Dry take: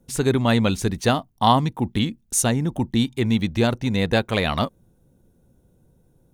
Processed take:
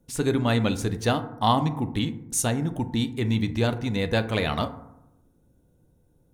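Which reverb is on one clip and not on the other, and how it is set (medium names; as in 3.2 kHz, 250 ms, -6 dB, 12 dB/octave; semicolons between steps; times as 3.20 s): FDN reverb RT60 0.86 s, low-frequency decay 1.2×, high-frequency decay 0.35×, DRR 8.5 dB; trim -4.5 dB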